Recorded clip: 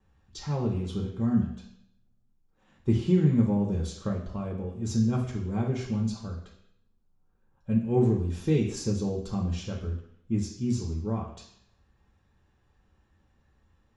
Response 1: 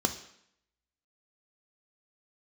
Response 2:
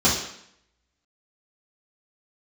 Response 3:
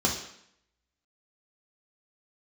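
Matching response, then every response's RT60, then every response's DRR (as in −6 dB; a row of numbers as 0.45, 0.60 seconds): 3; 0.70, 0.70, 0.70 seconds; 6.0, −9.0, −2.0 decibels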